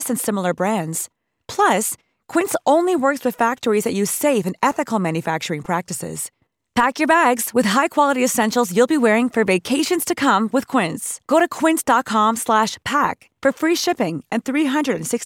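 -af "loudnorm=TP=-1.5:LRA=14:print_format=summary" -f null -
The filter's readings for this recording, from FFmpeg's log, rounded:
Input Integrated:    -19.1 LUFS
Input True Peak:      -3.9 dBTP
Input LRA:             2.5 LU
Input Threshold:     -29.2 LUFS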